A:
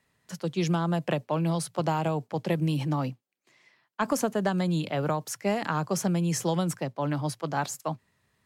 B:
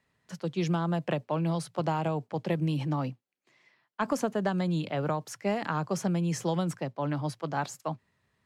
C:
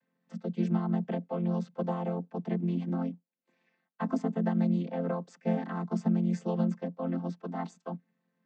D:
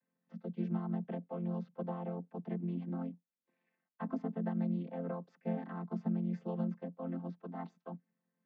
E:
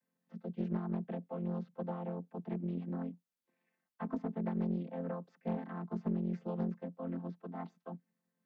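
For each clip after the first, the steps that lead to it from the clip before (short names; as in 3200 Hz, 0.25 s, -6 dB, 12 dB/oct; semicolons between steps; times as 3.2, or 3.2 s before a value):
high shelf 7800 Hz -11.5 dB; gain -2 dB
chord vocoder major triad, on F3
air absorption 250 m; gain -7 dB
Doppler distortion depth 0.45 ms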